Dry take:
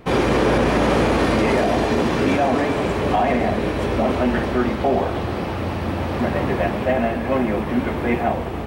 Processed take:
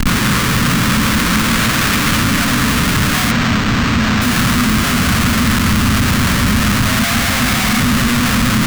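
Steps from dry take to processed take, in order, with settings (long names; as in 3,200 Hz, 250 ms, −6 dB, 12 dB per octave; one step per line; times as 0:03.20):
0:01.51–0:02.18: spectral tilt +2.5 dB per octave
background noise pink −33 dBFS
feedback delay with all-pass diffusion 1,144 ms, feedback 52%, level −5 dB
on a send at −5 dB: convolution reverb RT60 1.3 s, pre-delay 9 ms
on the sum: dead-zone distortion −45 dBFS
in parallel at 0 dB: brickwall limiter −20 dBFS, peak gain reduction 16 dB
0:07.02–0:07.80: on the sum: hollow resonant body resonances 750/2,200 Hz, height 15 dB, ringing for 30 ms
comparator with hysteresis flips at −22 dBFS
flat-topped bell 530 Hz −15.5 dB
0:03.31–0:04.22: linearly interpolated sample-rate reduction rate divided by 4×
level +4 dB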